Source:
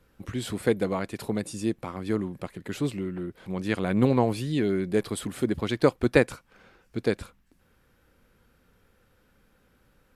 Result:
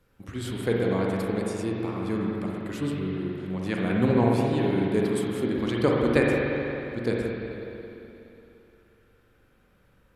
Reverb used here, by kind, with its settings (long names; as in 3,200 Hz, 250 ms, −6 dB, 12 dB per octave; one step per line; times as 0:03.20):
spring reverb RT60 3.1 s, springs 42/59 ms, chirp 50 ms, DRR −3 dB
level −3.5 dB